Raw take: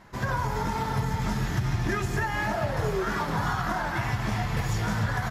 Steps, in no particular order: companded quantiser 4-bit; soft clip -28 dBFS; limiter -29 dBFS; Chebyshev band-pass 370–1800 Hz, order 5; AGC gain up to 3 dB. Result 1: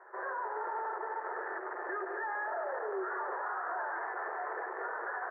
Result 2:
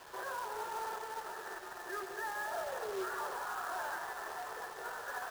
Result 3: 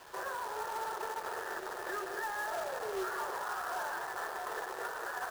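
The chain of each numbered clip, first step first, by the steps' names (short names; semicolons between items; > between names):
soft clip > AGC > companded quantiser > Chebyshev band-pass > limiter; AGC > limiter > Chebyshev band-pass > companded quantiser > soft clip; AGC > soft clip > Chebyshev band-pass > companded quantiser > limiter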